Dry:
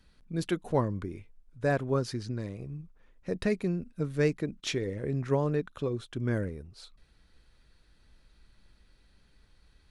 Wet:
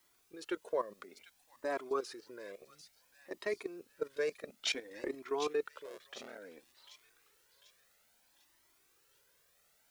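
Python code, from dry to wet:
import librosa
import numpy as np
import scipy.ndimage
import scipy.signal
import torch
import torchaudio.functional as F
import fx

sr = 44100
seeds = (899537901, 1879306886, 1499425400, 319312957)

y = fx.cycle_switch(x, sr, every=3, mode='muted', at=(5.84, 6.37), fade=0.02)
y = scipy.signal.sosfilt(scipy.signal.butter(4, 350.0, 'highpass', fs=sr, output='sos'), y)
y = fx.env_lowpass(y, sr, base_hz=2000.0, full_db=-30.5)
y = fx.transient(y, sr, attack_db=11, sustain_db=7, at=(4.46, 5.15))
y = fx.level_steps(y, sr, step_db=16)
y = fx.quant_dither(y, sr, seeds[0], bits=12, dither='triangular')
y = fx.echo_wet_highpass(y, sr, ms=746, feedback_pct=43, hz=2800.0, wet_db=-8.5)
y = fx.comb_cascade(y, sr, direction='rising', hz=0.58)
y = y * librosa.db_to_amplitude(4.5)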